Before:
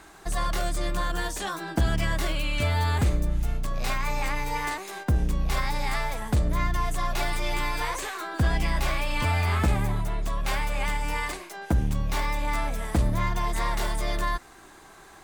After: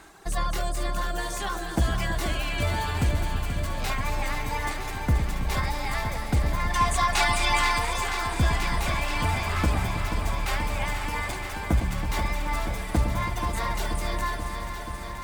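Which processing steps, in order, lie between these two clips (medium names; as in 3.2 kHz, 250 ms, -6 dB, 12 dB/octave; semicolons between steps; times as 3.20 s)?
reverb removal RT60 1.8 s; on a send: echo whose repeats swap between lows and highs 108 ms, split 840 Hz, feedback 84%, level -8.5 dB; on the sum: time-frequency box 6.70–7.78 s, 700–10000 Hz +9 dB; bit-crushed delay 482 ms, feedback 80%, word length 9-bit, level -8.5 dB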